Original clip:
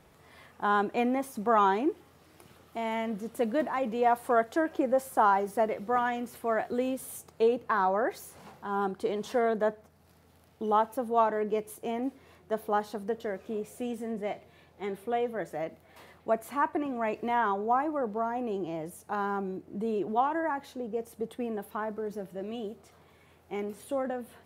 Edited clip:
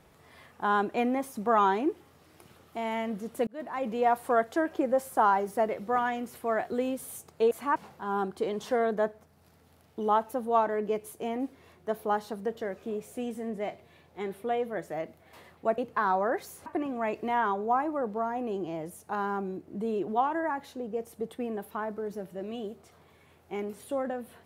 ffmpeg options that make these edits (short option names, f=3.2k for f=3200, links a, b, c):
-filter_complex "[0:a]asplit=6[a][b][c][d][e][f];[a]atrim=end=3.47,asetpts=PTS-STARTPTS,afade=t=out:st=3.466:d=0.004:c=hsin[g];[b]atrim=start=3.47:end=7.512,asetpts=PTS-STARTPTS,afade=t=in:d=0.42[h];[c]atrim=start=16.408:end=16.662[i];[d]atrim=start=8.388:end=16.412[j];[e]atrim=start=7.508:end=8.392[k];[f]atrim=start=16.658[l];[g][h]concat=n=2:v=0:a=1[m];[m][i]acrossfade=d=0.004:c1=hsin:c2=hsin[n];[n][j]acrossfade=d=0.004:c1=hsin:c2=hsin[o];[o][k]acrossfade=d=0.004:c1=hsin:c2=hsin[p];[p][l]acrossfade=d=0.004:c1=hsin:c2=hsin"